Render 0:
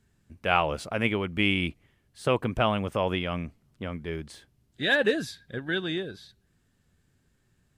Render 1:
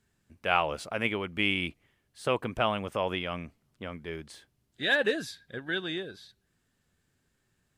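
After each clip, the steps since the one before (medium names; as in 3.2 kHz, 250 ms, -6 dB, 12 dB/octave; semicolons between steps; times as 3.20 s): bass shelf 270 Hz -7.5 dB; trim -1.5 dB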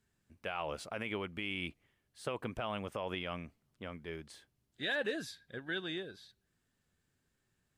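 peak limiter -20.5 dBFS, peak gain reduction 11 dB; trim -5.5 dB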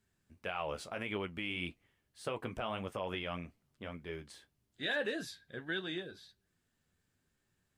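flange 1.7 Hz, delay 9.8 ms, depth 4.1 ms, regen -48%; trim +4 dB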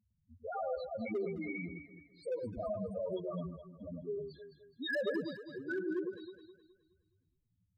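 loudest bins only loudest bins 2; hard clipper -38 dBFS, distortion -17 dB; echo whose repeats swap between lows and highs 105 ms, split 1.2 kHz, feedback 62%, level -5 dB; trim +7 dB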